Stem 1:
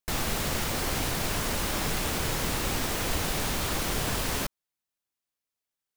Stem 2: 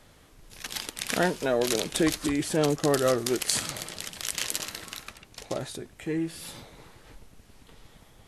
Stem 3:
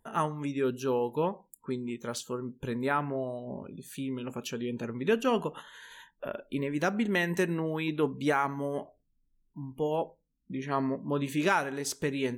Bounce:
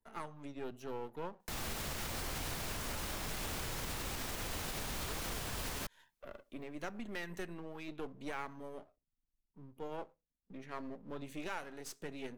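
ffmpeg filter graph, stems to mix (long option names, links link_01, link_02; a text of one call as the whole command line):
ffmpeg -i stem1.wav -i stem2.wav -i stem3.wav -filter_complex "[0:a]adelay=1400,volume=0dB[link_01];[2:a]aeval=exprs='if(lt(val(0),0),0.251*val(0),val(0))':channel_layout=same,volume=-10dB[link_02];[link_01][link_02]amix=inputs=2:normalize=0,acrossover=split=110|650[link_03][link_04][link_05];[link_03]acompressor=threshold=-35dB:ratio=4[link_06];[link_04]acompressor=threshold=-41dB:ratio=4[link_07];[link_05]acompressor=threshold=-34dB:ratio=4[link_08];[link_06][link_07][link_08]amix=inputs=3:normalize=0,alimiter=level_in=3dB:limit=-24dB:level=0:latency=1:release=129,volume=-3dB,volume=0dB,alimiter=level_in=6dB:limit=-24dB:level=0:latency=1:release=223,volume=-6dB" out.wav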